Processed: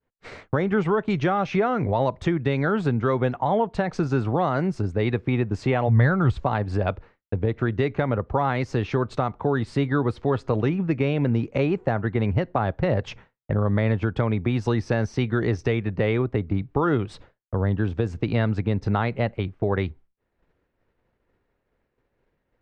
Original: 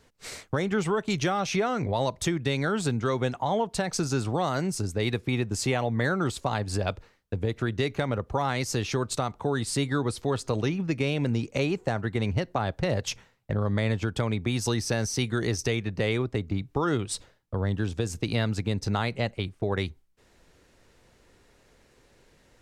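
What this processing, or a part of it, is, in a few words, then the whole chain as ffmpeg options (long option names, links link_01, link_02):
hearing-loss simulation: -filter_complex "[0:a]asplit=3[link_01][link_02][link_03];[link_01]afade=type=out:start_time=5.87:duration=0.02[link_04];[link_02]asubboost=boost=5.5:cutoff=120,afade=type=in:start_time=5.87:duration=0.02,afade=type=out:start_time=6.43:duration=0.02[link_05];[link_03]afade=type=in:start_time=6.43:duration=0.02[link_06];[link_04][link_05][link_06]amix=inputs=3:normalize=0,lowpass=2000,agate=range=-33dB:threshold=-49dB:ratio=3:detection=peak,volume=4.5dB"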